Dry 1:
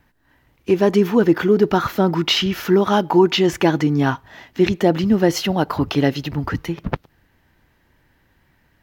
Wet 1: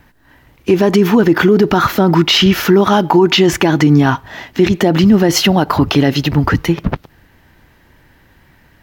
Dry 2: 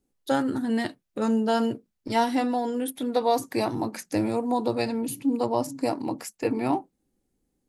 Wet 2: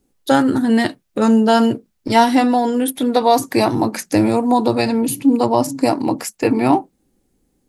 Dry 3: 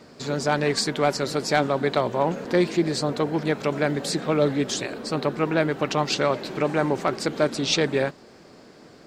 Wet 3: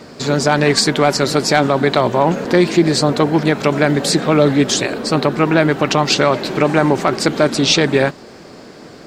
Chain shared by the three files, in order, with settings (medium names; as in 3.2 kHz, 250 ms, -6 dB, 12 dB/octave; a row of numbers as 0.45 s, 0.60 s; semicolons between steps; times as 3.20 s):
dynamic bell 490 Hz, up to -4 dB, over -32 dBFS, Q 4.1; peak limiter -13 dBFS; peak normalisation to -2 dBFS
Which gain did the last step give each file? +11.0 dB, +11.0 dB, +11.0 dB